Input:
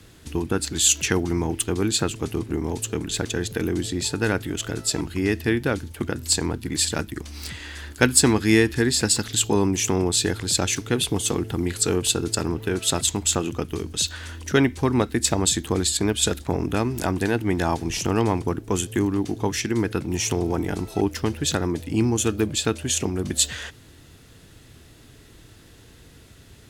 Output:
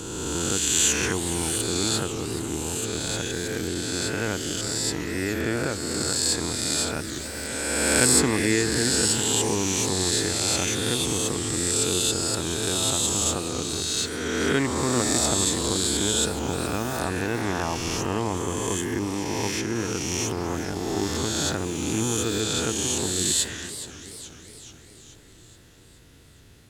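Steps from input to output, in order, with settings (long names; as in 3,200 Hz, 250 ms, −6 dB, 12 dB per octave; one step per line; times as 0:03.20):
peak hold with a rise ahead of every peak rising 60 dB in 2.23 s
feedback echo with a swinging delay time 426 ms, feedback 58%, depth 201 cents, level −13 dB
level −7.5 dB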